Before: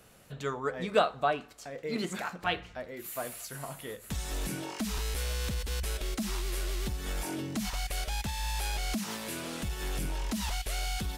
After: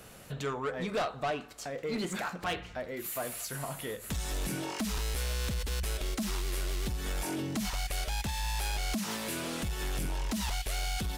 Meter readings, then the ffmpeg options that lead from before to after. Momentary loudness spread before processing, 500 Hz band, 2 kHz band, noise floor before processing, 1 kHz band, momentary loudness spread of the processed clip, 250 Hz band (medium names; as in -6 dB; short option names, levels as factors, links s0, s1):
8 LU, -2.0 dB, -0.5 dB, -51 dBFS, -2.0 dB, 4 LU, +0.5 dB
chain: -filter_complex "[0:a]asplit=2[s0][s1];[s1]acompressor=threshold=0.00631:ratio=6,volume=1.19[s2];[s0][s2]amix=inputs=2:normalize=0,asoftclip=type=tanh:threshold=0.0447"